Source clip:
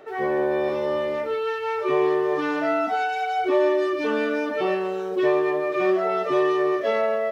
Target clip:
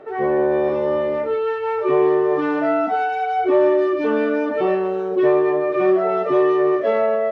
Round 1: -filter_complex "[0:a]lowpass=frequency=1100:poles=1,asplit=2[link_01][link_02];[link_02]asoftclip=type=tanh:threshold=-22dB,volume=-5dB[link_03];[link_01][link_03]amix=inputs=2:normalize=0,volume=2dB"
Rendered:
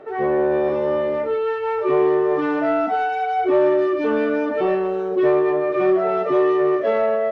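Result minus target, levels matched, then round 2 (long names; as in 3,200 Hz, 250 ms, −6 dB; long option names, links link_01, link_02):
soft clipping: distortion +10 dB
-filter_complex "[0:a]lowpass=frequency=1100:poles=1,asplit=2[link_01][link_02];[link_02]asoftclip=type=tanh:threshold=-14.5dB,volume=-5dB[link_03];[link_01][link_03]amix=inputs=2:normalize=0,volume=2dB"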